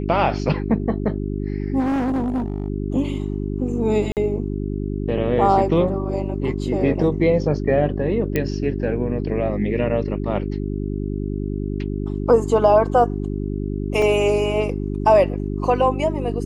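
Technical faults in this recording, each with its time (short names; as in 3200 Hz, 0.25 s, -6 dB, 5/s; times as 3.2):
hum 50 Hz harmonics 8 -25 dBFS
1.79–2.68 clipped -18.5 dBFS
4.12–4.17 gap 48 ms
8.36 pop -8 dBFS
14.02 gap 2.2 ms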